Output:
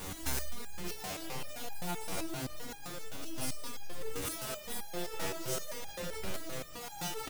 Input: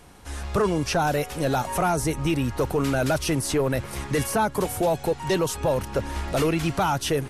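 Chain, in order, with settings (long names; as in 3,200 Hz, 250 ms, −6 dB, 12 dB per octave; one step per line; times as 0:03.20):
each half-wave held at its own peak
comb and all-pass reverb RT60 2.4 s, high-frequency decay 0.7×, pre-delay 50 ms, DRR 0 dB
compressor whose output falls as the input rises −29 dBFS, ratio −1
high-shelf EQ 3,700 Hz +11.5 dB
slap from a distant wall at 80 metres, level −11 dB
step-sequenced resonator 7.7 Hz 95–820 Hz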